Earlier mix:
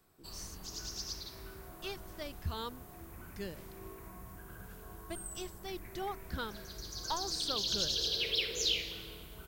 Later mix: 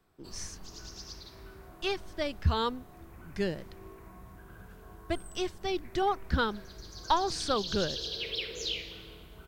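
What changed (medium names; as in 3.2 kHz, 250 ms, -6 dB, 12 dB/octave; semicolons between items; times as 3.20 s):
speech +11.5 dB; master: add treble shelf 6.2 kHz -12 dB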